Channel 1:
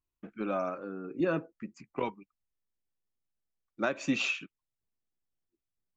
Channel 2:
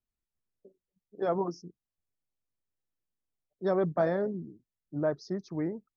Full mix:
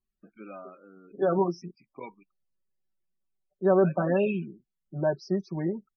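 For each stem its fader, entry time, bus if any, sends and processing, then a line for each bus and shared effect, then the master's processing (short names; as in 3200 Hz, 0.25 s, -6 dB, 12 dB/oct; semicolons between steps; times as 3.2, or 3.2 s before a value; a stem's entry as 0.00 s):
-4.0 dB, 0.00 s, no send, elliptic low-pass 4900 Hz, stop band 40 dB; high shelf 3000 Hz +10.5 dB; auto duck -8 dB, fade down 0.65 s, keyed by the second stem
+1.0 dB, 0.00 s, no send, comb 5.3 ms, depth 93%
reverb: off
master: loudest bins only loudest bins 32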